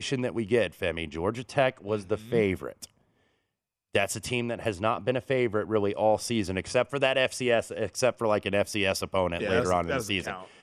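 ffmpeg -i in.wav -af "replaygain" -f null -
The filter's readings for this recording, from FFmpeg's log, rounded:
track_gain = +7.3 dB
track_peak = 0.249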